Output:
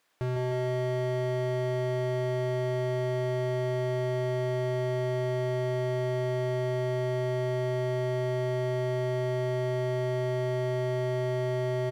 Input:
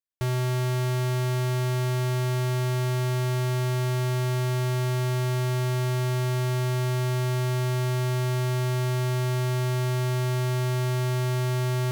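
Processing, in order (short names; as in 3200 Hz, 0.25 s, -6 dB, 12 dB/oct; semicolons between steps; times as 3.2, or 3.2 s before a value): vocal rider; on a send: feedback echo 0.154 s, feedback 27%, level -13 dB; on the sum: overdrive pedal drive 31 dB, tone 1300 Hz, clips at -19 dBFS; limiter -31 dBFS, peak gain reduction 10 dB; gain +6.5 dB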